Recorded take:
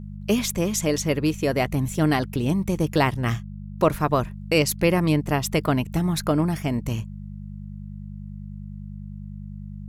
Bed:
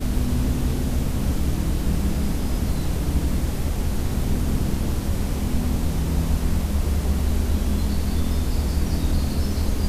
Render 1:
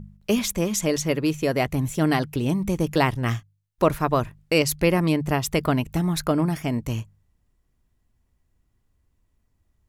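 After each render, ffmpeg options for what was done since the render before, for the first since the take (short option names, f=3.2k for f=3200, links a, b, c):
-af "bandreject=f=50:t=h:w=4,bandreject=f=100:t=h:w=4,bandreject=f=150:t=h:w=4,bandreject=f=200:t=h:w=4"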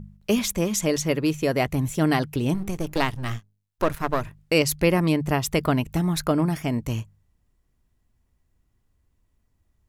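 -filter_complex "[0:a]asettb=1/sr,asplit=3[a][b][c];[a]atrim=end=2.544[d];[b]atrim=start=2.54:end=4.25,asetpts=PTS-STARTPTS,afade=t=in:d=0.004:c=qsin,afade=t=out:st=1.706:d=0.004:c=qsin,aeval=exprs='if(lt(val(0),0),0.251*val(0),val(0))':c=same[e];[c]atrim=start=4.246[f];[d][e]acrossfade=d=0.004:c1=hsin:c2=qsin[g];[g][f]acrossfade=d=0.004:c1=qsin:c2=hsin"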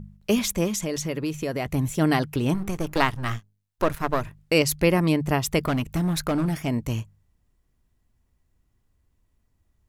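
-filter_complex "[0:a]asettb=1/sr,asplit=3[a][b][c];[a]atrim=end=0.704[d];[b]atrim=start=0.7:end=1.66,asetpts=PTS-STARTPTS,afade=t=in:d=0.004:c=qsin,afade=t=out:st=0.956:d=0.004:c=qsin,acompressor=threshold=-25dB:ratio=3:attack=3.2:release=140:knee=1:detection=peak[e];[c]atrim=start=1.656[f];[d][e]acrossfade=d=0.004:c1=hsin:c2=qsin[g];[g][f]acrossfade=d=0.004:c1=qsin:c2=hsin,asettb=1/sr,asplit=3[h][i][j];[h]atrim=end=2.284[k];[i]atrim=start=2.28:end=3.36,asetpts=PTS-STARTPTS,afade=t=in:d=0.004:c=qsin,afade=t=out:st=1.076:d=0.004:c=qsin,equalizer=f=1.3k:w=1.2:g=5.5[l];[j]atrim=start=3.356[m];[k][l]acrossfade=d=0.004:c1=hsin:c2=qsin[n];[n][m]acrossfade=d=0.004:c1=qsin:c2=hsin,asettb=1/sr,asplit=3[o][p][q];[o]atrim=end=5.654[r];[p]atrim=start=5.65:end=6.68,asetpts=PTS-STARTPTS,afade=t=in:d=0.004:c=qsin,afade=t=out:st=1.026:d=0.004:c=qsin,asoftclip=type=hard:threshold=-19.5dB[s];[q]atrim=start=6.676[t];[r][s]acrossfade=d=0.004:c1=hsin:c2=qsin[u];[u][t]acrossfade=d=0.004:c1=qsin:c2=hsin"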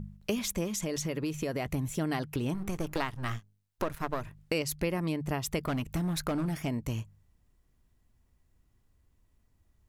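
-af "acompressor=threshold=-31dB:ratio=3"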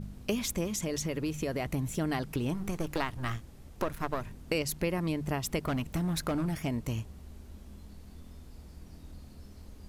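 -filter_complex "[1:a]volume=-26.5dB[a];[0:a][a]amix=inputs=2:normalize=0"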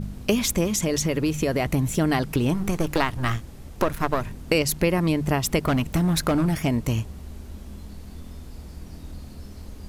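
-af "volume=9.5dB"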